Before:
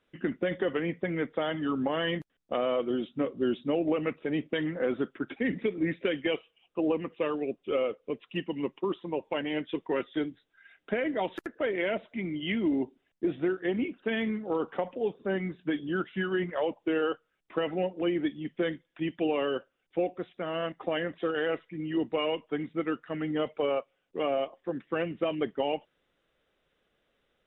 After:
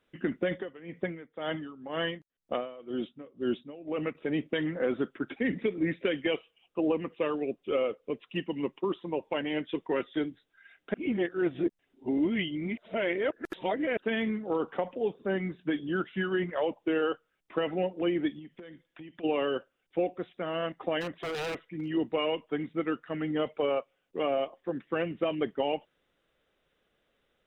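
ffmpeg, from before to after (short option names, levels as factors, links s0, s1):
-filter_complex "[0:a]asettb=1/sr,asplit=3[s0][s1][s2];[s0]atrim=end=0.524[s3];[s1]atrim=start=0.52:end=4.15,asetpts=PTS-STARTPTS,afade=t=in:d=0.004:c=qsin,afade=t=out:st=3.626:d=0.004:c=qsin,aeval=exprs='val(0)*pow(10,-19*(0.5-0.5*cos(2*PI*2*n/s))/20)':c=same[s4];[s2]atrim=start=4.146[s5];[s3][s4]acrossfade=d=0.004:c1=hsin:c2=qsin[s6];[s6][s5]acrossfade=d=0.004:c1=qsin:c2=hsin,asplit=3[s7][s8][s9];[s7]afade=t=out:st=18.38:d=0.02[s10];[s8]acompressor=threshold=0.00794:ratio=16:attack=3.2:release=140:knee=1:detection=peak,afade=t=in:st=18.38:d=0.02,afade=t=out:st=19.23:d=0.02[s11];[s9]afade=t=in:st=19.23:d=0.02[s12];[s10][s11][s12]amix=inputs=3:normalize=0,asplit=3[s13][s14][s15];[s13]afade=t=out:st=21:d=0.02[s16];[s14]aeval=exprs='0.0355*(abs(mod(val(0)/0.0355+3,4)-2)-1)':c=same,afade=t=in:st=21:d=0.02,afade=t=out:st=21.87:d=0.02[s17];[s15]afade=t=in:st=21.87:d=0.02[s18];[s16][s17][s18]amix=inputs=3:normalize=0,asplit=3[s19][s20][s21];[s19]atrim=end=10.942[s22];[s20]atrim=start=10.938:end=13.972,asetpts=PTS-STARTPTS,areverse[s23];[s21]atrim=start=13.968[s24];[s22][s23]acrossfade=d=0.004:c1=hsin:c2=hsin[s25];[s25][s24]acrossfade=d=0.004:c1=hsin:c2=hsin"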